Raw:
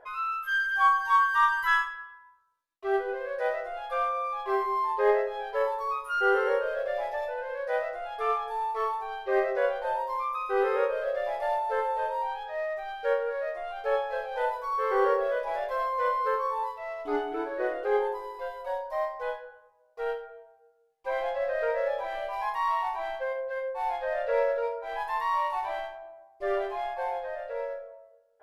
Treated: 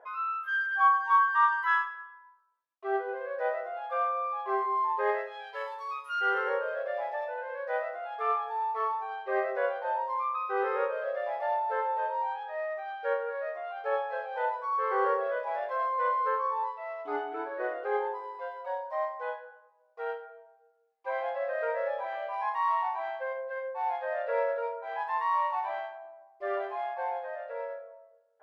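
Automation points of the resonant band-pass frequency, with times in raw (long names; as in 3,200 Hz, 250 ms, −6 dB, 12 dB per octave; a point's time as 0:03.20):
resonant band-pass, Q 0.71
0:04.88 890 Hz
0:05.43 3,000 Hz
0:06.12 3,000 Hz
0:06.58 1,100 Hz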